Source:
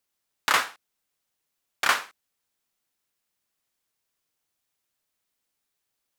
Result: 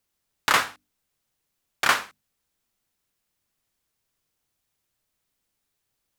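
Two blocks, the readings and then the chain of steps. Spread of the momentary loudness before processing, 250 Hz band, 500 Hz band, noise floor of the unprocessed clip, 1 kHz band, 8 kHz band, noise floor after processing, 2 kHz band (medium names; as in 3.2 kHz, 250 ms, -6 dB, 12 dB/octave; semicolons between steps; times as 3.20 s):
9 LU, +5.5 dB, +3.0 dB, -81 dBFS, +2.0 dB, +1.5 dB, -79 dBFS, +1.5 dB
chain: bass shelf 210 Hz +11.5 dB; hum notches 50/100/150/200/250/300 Hz; trim +1.5 dB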